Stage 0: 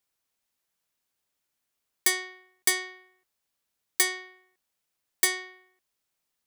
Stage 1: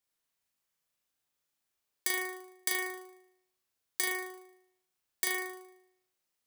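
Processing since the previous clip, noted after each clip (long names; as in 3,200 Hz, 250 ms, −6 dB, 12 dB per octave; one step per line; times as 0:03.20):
downward compressor, threshold −23 dBFS, peak gain reduction 6 dB
on a send: flutter between parallel walls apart 6.5 metres, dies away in 0.71 s
on the sum: level −5.5 dB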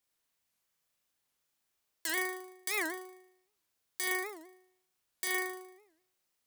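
brickwall limiter −24 dBFS, peak gain reduction 9.5 dB
wow of a warped record 78 rpm, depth 250 cents
level +2.5 dB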